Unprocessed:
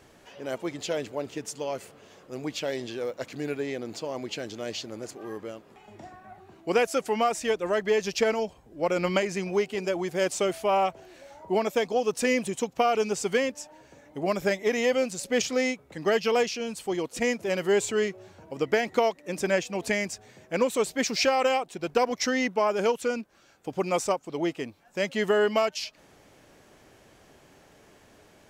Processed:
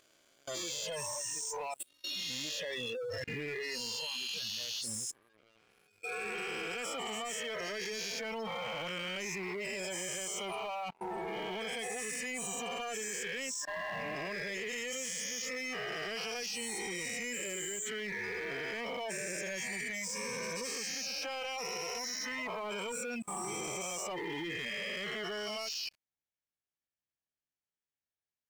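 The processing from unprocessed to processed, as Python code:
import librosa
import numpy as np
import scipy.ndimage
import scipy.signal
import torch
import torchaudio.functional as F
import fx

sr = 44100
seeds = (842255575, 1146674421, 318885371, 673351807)

p1 = fx.spec_swells(x, sr, rise_s=2.8)
p2 = fx.noise_reduce_blind(p1, sr, reduce_db=13)
p3 = fx.tone_stack(p2, sr, knobs='5-5-5')
p4 = fx.spec_gate(p3, sr, threshold_db=-15, keep='strong')
p5 = fx.rider(p4, sr, range_db=3, speed_s=0.5)
p6 = p4 + (p5 * librosa.db_to_amplitude(1.0))
p7 = fx.dynamic_eq(p6, sr, hz=1200.0, q=1.1, threshold_db=-45.0, ratio=4.0, max_db=-5)
p8 = fx.level_steps(p7, sr, step_db=24)
y = fx.leveller(p8, sr, passes=3)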